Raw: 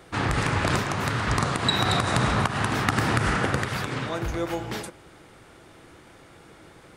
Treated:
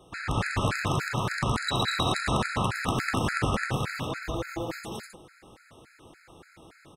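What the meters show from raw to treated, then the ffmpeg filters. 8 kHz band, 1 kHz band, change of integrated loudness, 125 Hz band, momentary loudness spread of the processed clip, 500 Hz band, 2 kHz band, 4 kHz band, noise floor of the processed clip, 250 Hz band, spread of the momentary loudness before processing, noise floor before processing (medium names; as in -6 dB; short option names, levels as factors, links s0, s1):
-3.5 dB, -3.5 dB, -3.5 dB, -4.0 dB, 9 LU, -3.5 dB, -3.5 dB, -3.5 dB, -58 dBFS, -3.5 dB, 7 LU, -51 dBFS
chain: -af "aecho=1:1:113.7|198.3|262.4:0.562|0.794|0.562,aeval=exprs='0.562*(cos(1*acos(clip(val(0)/0.562,-1,1)))-cos(1*PI/2))+0.0141*(cos(8*acos(clip(val(0)/0.562,-1,1)))-cos(8*PI/2))':c=same,afftfilt=real='re*gt(sin(2*PI*3.5*pts/sr)*(1-2*mod(floor(b*sr/1024/1300),2)),0)':imag='im*gt(sin(2*PI*3.5*pts/sr)*(1-2*mod(floor(b*sr/1024/1300),2)),0)':win_size=1024:overlap=0.75,volume=0.631"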